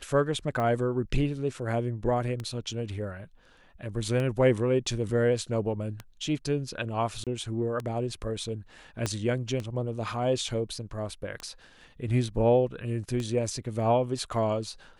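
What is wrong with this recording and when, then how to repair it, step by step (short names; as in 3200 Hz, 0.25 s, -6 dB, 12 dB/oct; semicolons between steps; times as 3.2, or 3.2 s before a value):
tick 33 1/3 rpm -20 dBFS
7.24–7.27 gap 27 ms
9.06 pop -14 dBFS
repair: de-click; interpolate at 7.24, 27 ms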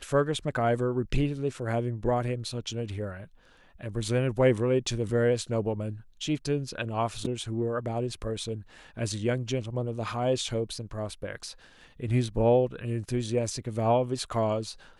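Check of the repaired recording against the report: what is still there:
9.06 pop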